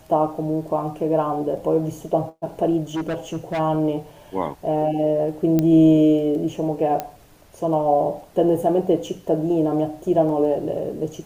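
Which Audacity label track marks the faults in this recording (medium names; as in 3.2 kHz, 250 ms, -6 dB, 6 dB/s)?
2.940000	3.600000	clipped -21.5 dBFS
5.590000	5.590000	pop -8 dBFS
7.000000	7.000000	pop -12 dBFS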